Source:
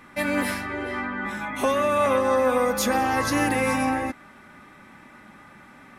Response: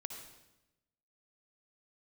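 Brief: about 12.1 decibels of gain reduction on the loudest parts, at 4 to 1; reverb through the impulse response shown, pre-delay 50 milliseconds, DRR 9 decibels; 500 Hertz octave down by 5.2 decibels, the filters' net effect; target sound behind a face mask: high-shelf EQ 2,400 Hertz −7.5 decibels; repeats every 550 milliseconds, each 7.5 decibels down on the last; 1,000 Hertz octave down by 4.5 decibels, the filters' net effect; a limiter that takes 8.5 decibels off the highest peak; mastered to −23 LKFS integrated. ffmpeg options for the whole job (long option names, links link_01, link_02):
-filter_complex "[0:a]equalizer=frequency=500:width_type=o:gain=-4.5,equalizer=frequency=1000:width_type=o:gain=-3,acompressor=threshold=-36dB:ratio=4,alimiter=level_in=8dB:limit=-24dB:level=0:latency=1,volume=-8dB,aecho=1:1:550|1100|1650|2200|2750:0.422|0.177|0.0744|0.0312|0.0131,asplit=2[link_01][link_02];[1:a]atrim=start_sample=2205,adelay=50[link_03];[link_02][link_03]afir=irnorm=-1:irlink=0,volume=-7dB[link_04];[link_01][link_04]amix=inputs=2:normalize=0,highshelf=frequency=2400:gain=-7.5,volume=19dB"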